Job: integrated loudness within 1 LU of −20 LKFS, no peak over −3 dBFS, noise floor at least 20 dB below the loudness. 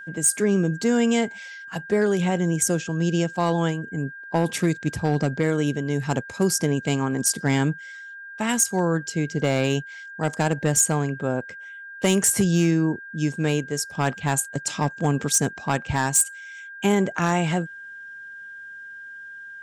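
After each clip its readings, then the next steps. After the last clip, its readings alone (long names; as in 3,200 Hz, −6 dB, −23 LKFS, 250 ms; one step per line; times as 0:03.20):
share of clipped samples 0.3%; peaks flattened at −12.0 dBFS; interfering tone 1,600 Hz; level of the tone −37 dBFS; integrated loudness −23.0 LKFS; sample peak −12.0 dBFS; target loudness −20.0 LKFS
→ clipped peaks rebuilt −12 dBFS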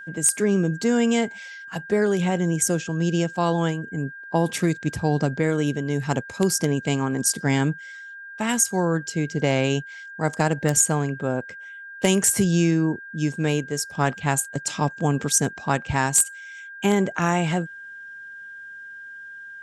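share of clipped samples 0.0%; interfering tone 1,600 Hz; level of the tone −37 dBFS
→ notch filter 1,600 Hz, Q 30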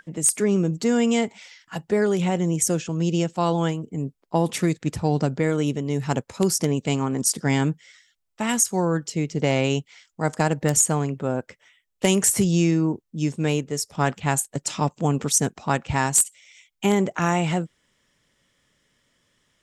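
interfering tone none found; integrated loudness −23.0 LKFS; sample peak −3.0 dBFS; target loudness −20.0 LKFS
→ level +3 dB
brickwall limiter −3 dBFS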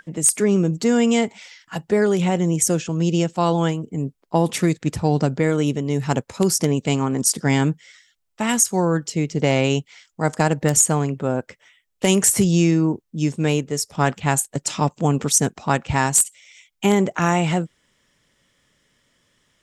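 integrated loudness −20.0 LKFS; sample peak −3.0 dBFS; background noise floor −72 dBFS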